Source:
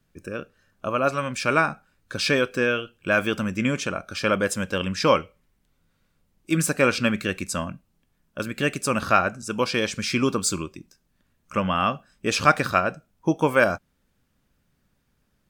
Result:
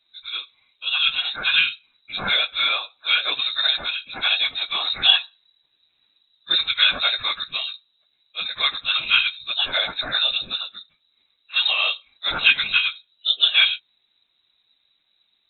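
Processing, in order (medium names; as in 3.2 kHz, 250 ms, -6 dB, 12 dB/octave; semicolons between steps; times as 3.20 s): phase randomisation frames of 50 ms; frequency inversion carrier 3.9 kHz; trim +1.5 dB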